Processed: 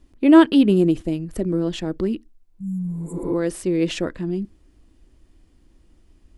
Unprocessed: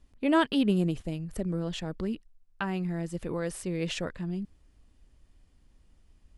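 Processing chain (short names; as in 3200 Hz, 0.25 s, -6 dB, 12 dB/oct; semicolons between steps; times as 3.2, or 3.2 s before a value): bell 320 Hz +9 dB 0.76 oct; on a send at -18.5 dB: reverb RT60 0.15 s, pre-delay 3 ms; on the sum: spectral repair 2.49–3.29, 200–6800 Hz both; gain +5 dB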